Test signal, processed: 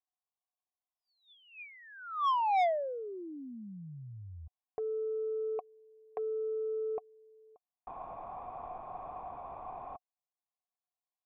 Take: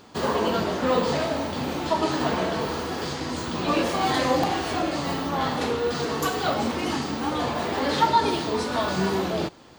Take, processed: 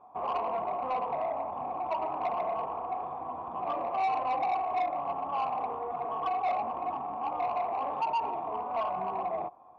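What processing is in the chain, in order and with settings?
in parallel at −2 dB: brickwall limiter −17 dBFS
on the sum: formant resonators in series a
soft clipping −27 dBFS
level +2.5 dB

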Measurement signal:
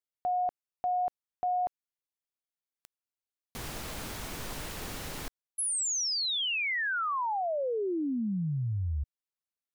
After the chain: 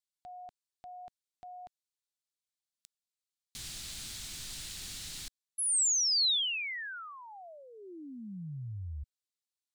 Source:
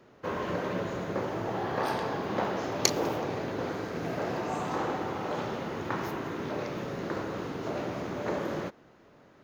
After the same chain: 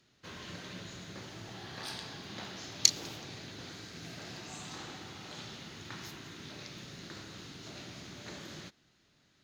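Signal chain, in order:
octave-band graphic EQ 250/500/1,000/4,000/8,000 Hz −3/−12/−8/+10/+10 dB
level −8 dB

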